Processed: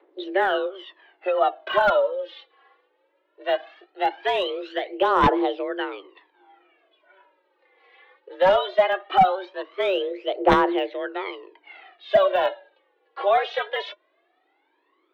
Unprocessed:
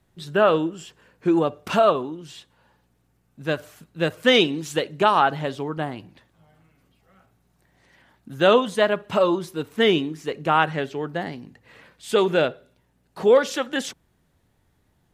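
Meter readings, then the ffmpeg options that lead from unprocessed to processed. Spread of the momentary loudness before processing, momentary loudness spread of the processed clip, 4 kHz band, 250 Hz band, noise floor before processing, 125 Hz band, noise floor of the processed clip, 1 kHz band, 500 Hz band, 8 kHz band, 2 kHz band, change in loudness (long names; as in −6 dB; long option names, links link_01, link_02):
13 LU, 14 LU, −4.5 dB, −5.0 dB, −66 dBFS, −8.5 dB, −69 dBFS, +2.0 dB, −1.5 dB, below −15 dB, −1.5 dB, −1.0 dB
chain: -af "aphaser=in_gain=1:out_gain=1:delay=3.4:decay=0.78:speed=0.19:type=triangular,highpass=frequency=150:width_type=q:width=0.5412,highpass=frequency=150:width_type=q:width=1.307,lowpass=frequency=3400:width_type=q:width=0.5176,lowpass=frequency=3400:width_type=q:width=0.7071,lowpass=frequency=3400:width_type=q:width=1.932,afreqshift=190,deesser=0.95"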